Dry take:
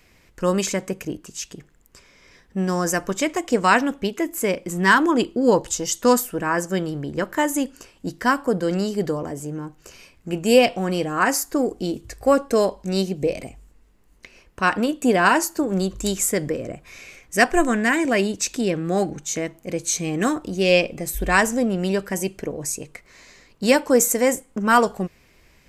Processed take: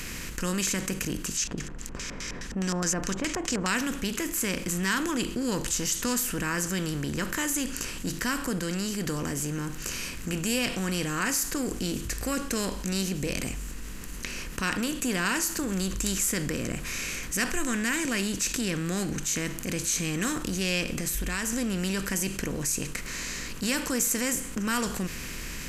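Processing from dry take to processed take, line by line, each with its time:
0:01.37–0:03.68: auto-filter low-pass square 4.8 Hz 760–6,300 Hz
0:08.59–0:09.06: clip gain −4.5 dB
0:20.83–0:21.53: downward compressor, threshold −27 dBFS
whole clip: compressor on every frequency bin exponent 0.6; guitar amp tone stack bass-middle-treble 6-0-2; envelope flattener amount 50%; level +5.5 dB

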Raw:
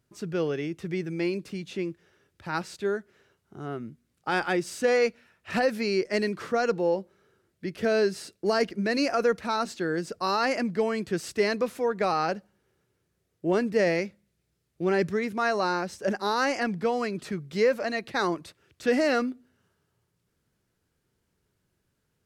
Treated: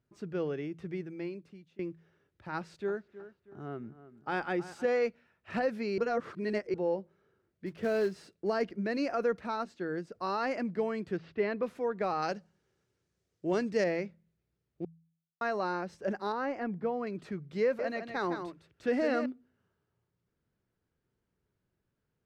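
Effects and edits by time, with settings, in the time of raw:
0:00.82–0:01.79: fade out, to −22.5 dB
0:02.56–0:04.86: delay with a low-pass on its return 318 ms, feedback 40%, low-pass 2,600 Hz, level −14.5 dB
0:05.98–0:06.74: reverse
0:07.66–0:08.31: floating-point word with a short mantissa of 2 bits
0:09.55–0:10.15: expander for the loud parts, over −36 dBFS
0:11.17–0:11.63: low-pass filter 3,600 Hz 24 dB per octave
0:12.22–0:13.84: parametric band 6,300 Hz +13.5 dB 1.8 octaves
0:14.85–0:15.41: silence
0:16.32–0:17.07: low-pass filter 1,300 Hz 6 dB per octave
0:17.63–0:19.26: single-tap delay 159 ms −7.5 dB
whole clip: low-pass filter 1,900 Hz 6 dB per octave; hum removal 82.08 Hz, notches 2; level −5.5 dB

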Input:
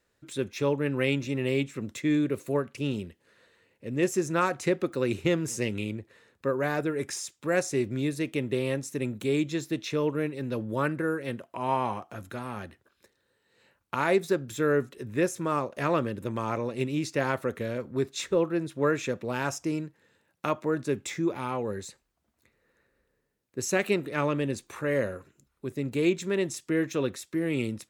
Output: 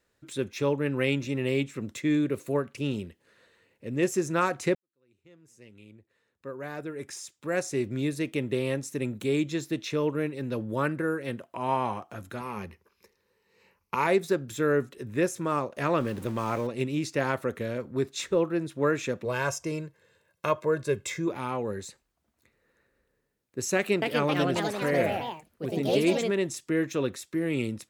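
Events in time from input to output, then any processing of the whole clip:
0:04.75–0:08.04: fade in quadratic
0:12.40–0:14.07: EQ curve with evenly spaced ripples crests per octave 0.82, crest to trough 10 dB
0:16.00–0:16.67: converter with a step at zero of −40.5 dBFS
0:19.25–0:21.28: comb filter 1.9 ms
0:23.75–0:26.47: delay with pitch and tempo change per echo 269 ms, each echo +3 semitones, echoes 3

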